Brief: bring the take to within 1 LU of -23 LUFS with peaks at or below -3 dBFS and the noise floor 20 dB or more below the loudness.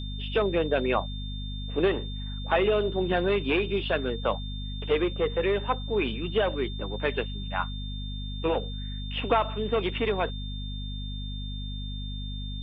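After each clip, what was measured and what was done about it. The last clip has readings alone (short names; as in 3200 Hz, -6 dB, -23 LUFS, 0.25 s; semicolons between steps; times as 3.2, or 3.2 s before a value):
hum 50 Hz; harmonics up to 250 Hz; hum level -32 dBFS; steady tone 3600 Hz; tone level -41 dBFS; loudness -29.0 LUFS; peak -10.5 dBFS; loudness target -23.0 LUFS
-> de-hum 50 Hz, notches 5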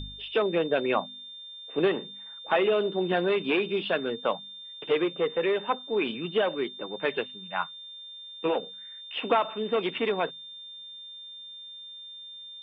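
hum none; steady tone 3600 Hz; tone level -41 dBFS
-> notch 3600 Hz, Q 30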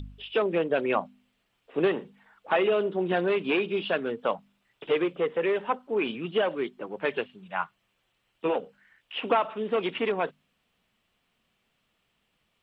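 steady tone none; loudness -28.5 LUFS; peak -11.5 dBFS; loudness target -23.0 LUFS
-> gain +5.5 dB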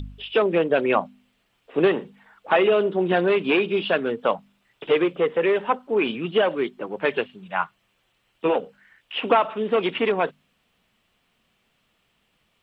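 loudness -23.0 LUFS; peak -6.0 dBFS; noise floor -69 dBFS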